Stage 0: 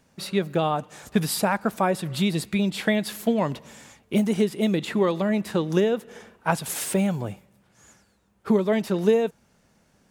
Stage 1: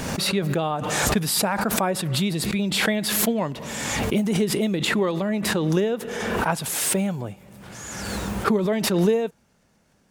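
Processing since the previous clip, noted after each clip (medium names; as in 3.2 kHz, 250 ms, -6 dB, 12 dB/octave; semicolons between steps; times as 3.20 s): swell ahead of each attack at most 28 dB/s; trim -1.5 dB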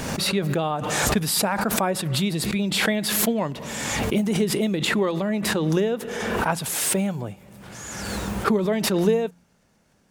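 de-hum 87.67 Hz, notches 3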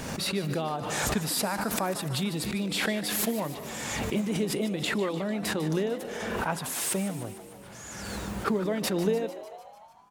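frequency-shifting echo 149 ms, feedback 63%, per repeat +91 Hz, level -14 dB; trim -6.5 dB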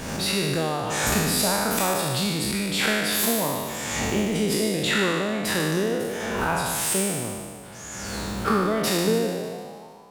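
spectral sustain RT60 1.66 s; trim +1.5 dB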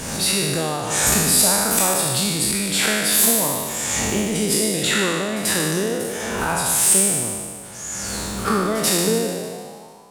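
peaking EQ 9.1 kHz +10 dB 1.3 oct; pre-echo 87 ms -16 dB; trim +1.5 dB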